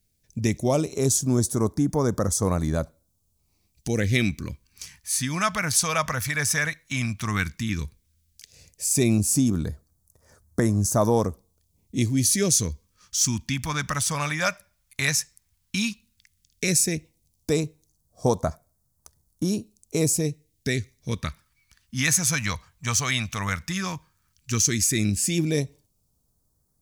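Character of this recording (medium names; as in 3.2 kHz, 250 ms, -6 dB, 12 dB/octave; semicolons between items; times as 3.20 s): phasing stages 2, 0.12 Hz, lowest notch 350–2500 Hz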